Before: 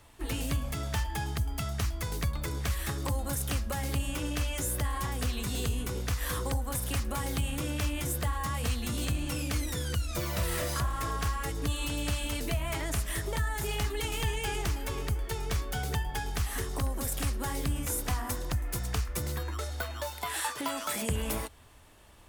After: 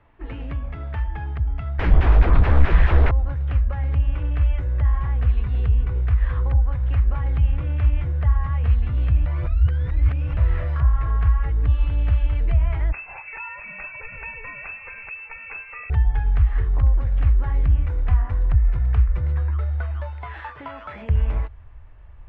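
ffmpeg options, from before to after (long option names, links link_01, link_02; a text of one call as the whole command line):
ffmpeg -i in.wav -filter_complex "[0:a]asettb=1/sr,asplit=3[link_01][link_02][link_03];[link_01]atrim=end=1.794[link_04];[link_02]atrim=start=1.79:end=3.11,asetpts=PTS-STARTPTS,afade=type=in:duration=0.004:curve=qsin,afade=type=out:start_time=1.316:duration=0.004:curve=qsin,aeval=exprs='0.119*sin(PI/2*7.08*val(0)/0.119)':channel_layout=same[link_05];[link_03]atrim=start=3.106[link_06];[link_04][link_05]acrossfade=duration=0.004:curve1=hsin:curve2=qsin[link_07];[link_07][link_06]acrossfade=duration=0.004:curve1=qsin:curve2=hsin,asettb=1/sr,asplit=3[link_08][link_09][link_10];[link_08]atrim=end=12.924[link_11];[link_09]atrim=start=12.92:end=15.9,asetpts=PTS-STARTPTS,afade=type=in:duration=0.004:curve=qsin,afade=type=out:start_time=2.976:duration=0.004:curve=qsin,lowpass=frequency=2300:width_type=q:width=0.5098,lowpass=frequency=2300:width_type=q:width=0.6013,lowpass=frequency=2300:width_type=q:width=0.9,lowpass=frequency=2300:width_type=q:width=2.563,afreqshift=-2700[link_12];[link_10]atrim=start=15.896[link_13];[link_11][link_12]acrossfade=duration=0.004:curve1=hsin:curve2=qsin[link_14];[link_14][link_13]acrossfade=duration=0.004:curve1=qsin:curve2=hsin,asplit=3[link_15][link_16][link_17];[link_15]atrim=end=9.262[link_18];[link_16]atrim=start=9.258:end=10.372,asetpts=PTS-STARTPTS,areverse[link_19];[link_17]atrim=start=10.368[link_20];[link_18][link_19]acrossfade=duration=0.004:curve1=hsin:curve2=hsin[link_21];[link_21][link_20]acrossfade=duration=0.004:curve1=hsin:curve2=hsin,lowpass=frequency=2300:width=0.5412,lowpass=frequency=2300:width=1.3066,asubboost=boost=10.5:cutoff=75" out.wav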